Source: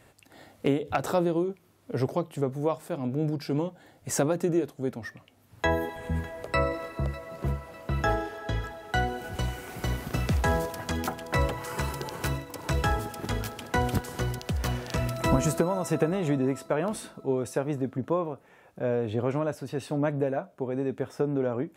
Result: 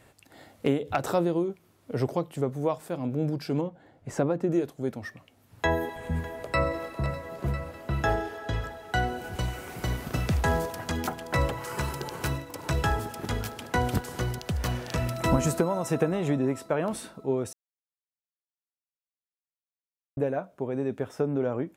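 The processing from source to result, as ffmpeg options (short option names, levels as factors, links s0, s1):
-filter_complex "[0:a]asettb=1/sr,asplit=3[s0][s1][s2];[s0]atrim=end=3.614[s3];[s1]atrim=start=3.61:end=4.51,asetpts=PTS-STARTPTS,afade=t=in:d=0.004:c=qsin,afade=t=out:st=0.896:d=0.004:c=qsin,lowpass=f=1400:p=1[s4];[s2]atrim=start=4.506[s5];[s3][s4]acrossfade=d=0.004:c1=hsin:c2=qsin[s6];[s6][s5]acrossfade=d=0.004:c1=qsin:c2=hsin,asplit=2[s7][s8];[s8]afade=t=in:st=5.74:d=0.01,afade=t=out:st=6.71:d=0.01,aecho=0:1:500|1000|1500|2000|2500|3000|3500|4000|4500|5000|5500|6000:0.266073|0.199554|0.149666|0.112249|0.084187|0.0631403|0.0473552|0.0355164|0.0266373|0.019978|0.0149835|0.0112376[s9];[s7][s9]amix=inputs=2:normalize=0,asplit=3[s10][s11][s12];[s10]atrim=end=17.53,asetpts=PTS-STARTPTS,afade=t=out:st=17.526:d=0.004:c=hsin[s13];[s11]atrim=start=17.53:end=20.17,asetpts=PTS-STARTPTS,volume=0[s14];[s12]atrim=start=20.17,asetpts=PTS-STARTPTS,afade=t=in:d=0.004:c=hsin[s15];[s13][s14][s15]concat=n=3:v=0:a=1"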